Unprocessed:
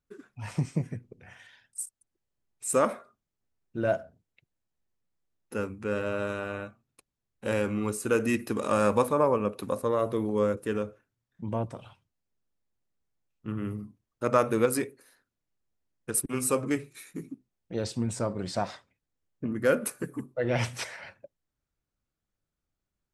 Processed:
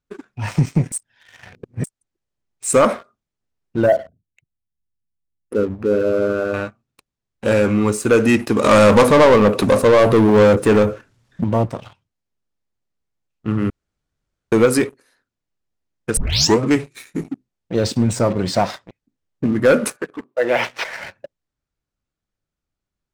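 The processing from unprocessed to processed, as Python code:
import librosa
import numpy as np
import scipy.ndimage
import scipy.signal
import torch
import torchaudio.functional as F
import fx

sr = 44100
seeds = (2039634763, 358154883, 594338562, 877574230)

y = fx.envelope_sharpen(x, sr, power=2.0, at=(3.86, 6.54))
y = fx.power_curve(y, sr, exponent=0.7, at=(8.64, 11.44))
y = fx.echo_throw(y, sr, start_s=17.33, length_s=0.41, ms=580, feedback_pct=35, wet_db=-1.0)
y = fx.bandpass_edges(y, sr, low_hz=450.0, high_hz=3200.0, at=(19.96, 20.92), fade=0.02)
y = fx.edit(y, sr, fx.reverse_span(start_s=0.92, length_s=0.92),
    fx.room_tone_fill(start_s=13.7, length_s=0.82),
    fx.tape_start(start_s=16.17, length_s=0.44), tone=tone)
y = scipy.signal.sosfilt(scipy.signal.butter(2, 7800.0, 'lowpass', fs=sr, output='sos'), y)
y = fx.leveller(y, sr, passes=2)
y = y * 10.0 ** (6.0 / 20.0)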